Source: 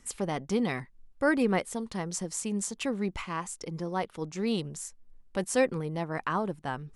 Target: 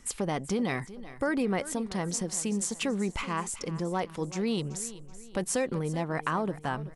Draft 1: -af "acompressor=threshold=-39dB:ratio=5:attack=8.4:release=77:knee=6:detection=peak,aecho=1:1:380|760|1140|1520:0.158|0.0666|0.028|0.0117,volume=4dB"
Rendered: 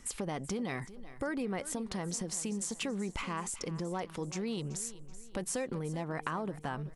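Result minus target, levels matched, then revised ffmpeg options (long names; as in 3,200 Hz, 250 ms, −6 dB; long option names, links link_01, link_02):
downward compressor: peak gain reduction +7 dB
-af "acompressor=threshold=-30dB:ratio=5:attack=8.4:release=77:knee=6:detection=peak,aecho=1:1:380|760|1140|1520:0.158|0.0666|0.028|0.0117,volume=4dB"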